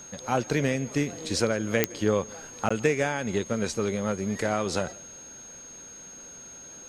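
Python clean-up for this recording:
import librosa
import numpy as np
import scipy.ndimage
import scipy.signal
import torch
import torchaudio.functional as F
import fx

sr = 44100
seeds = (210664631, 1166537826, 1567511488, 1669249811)

y = fx.fix_declick_ar(x, sr, threshold=10.0)
y = fx.notch(y, sr, hz=6500.0, q=30.0)
y = fx.fix_interpolate(y, sr, at_s=(2.69,), length_ms=15.0)
y = fx.fix_echo_inverse(y, sr, delay_ms=165, level_db=-24.0)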